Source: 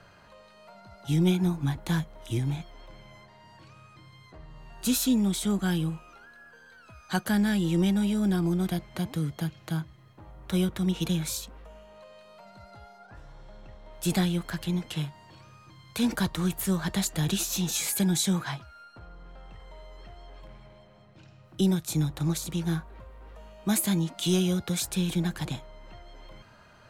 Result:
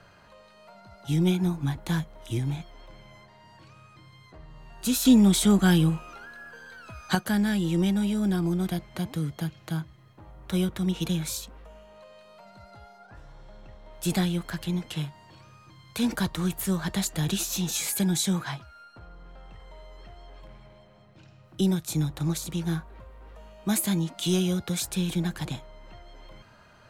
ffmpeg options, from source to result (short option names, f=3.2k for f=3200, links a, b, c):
-filter_complex "[0:a]asettb=1/sr,asplit=3[a][b][c];[a]atrim=end=5.054[d];[b]atrim=start=5.05:end=7.15,asetpts=PTS-STARTPTS,afade=t=in:d=0.004:c=qsin,afade=t=out:st=2.096:d=0.004:c=qsin,acontrast=86[e];[c]atrim=start=7.146[f];[d][e]acrossfade=d=0.004:c1=hsin:c2=qsin[g];[g][f]acrossfade=d=0.004:c1=qsin:c2=hsin"